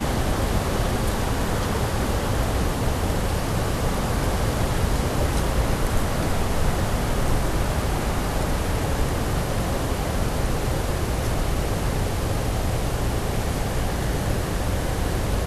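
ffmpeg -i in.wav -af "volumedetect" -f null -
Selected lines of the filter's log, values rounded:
mean_volume: -22.6 dB
max_volume: -9.4 dB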